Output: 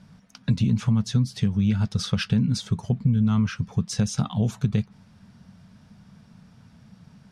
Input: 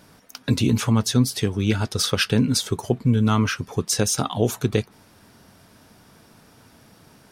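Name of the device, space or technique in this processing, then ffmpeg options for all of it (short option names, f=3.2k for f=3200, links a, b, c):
jukebox: -af "lowpass=6.5k,lowshelf=f=250:t=q:w=3:g=8.5,acompressor=threshold=-10dB:ratio=6,volume=-7dB"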